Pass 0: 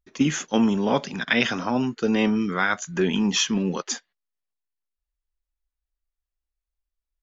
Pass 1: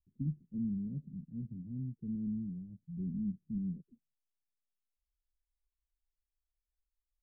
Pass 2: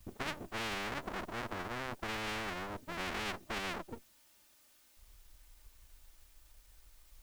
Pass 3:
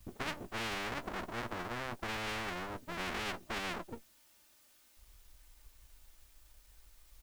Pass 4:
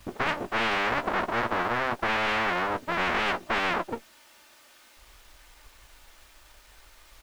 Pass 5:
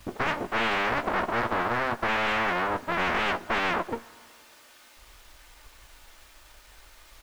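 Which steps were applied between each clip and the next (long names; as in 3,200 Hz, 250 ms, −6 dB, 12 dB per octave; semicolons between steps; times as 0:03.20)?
inverse Chebyshev low-pass filter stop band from 1,000 Hz, stop band 80 dB; level −4.5 dB
lower of the sound and its delayed copy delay 3.3 ms; every bin compressed towards the loudest bin 10 to 1; level +9 dB
double-tracking delay 17 ms −12.5 dB
mid-hump overdrive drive 15 dB, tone 2,000 Hz, clips at −19.5 dBFS; level +9 dB
soft clipping −16.5 dBFS, distortion −19 dB; convolution reverb RT60 2.2 s, pre-delay 5 ms, DRR 18.5 dB; level +1.5 dB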